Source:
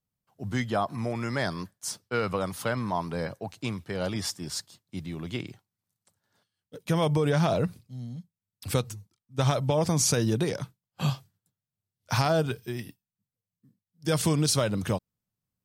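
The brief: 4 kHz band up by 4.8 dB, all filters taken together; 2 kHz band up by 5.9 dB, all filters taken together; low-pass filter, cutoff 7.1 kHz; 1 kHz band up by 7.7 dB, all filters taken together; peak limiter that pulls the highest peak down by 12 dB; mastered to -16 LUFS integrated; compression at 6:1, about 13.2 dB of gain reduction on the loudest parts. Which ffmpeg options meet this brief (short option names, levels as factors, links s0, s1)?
-af "lowpass=7100,equalizer=f=1000:t=o:g=9,equalizer=f=2000:t=o:g=3,equalizer=f=4000:t=o:g=5.5,acompressor=threshold=0.0282:ratio=6,volume=14.1,alimiter=limit=0.631:level=0:latency=1"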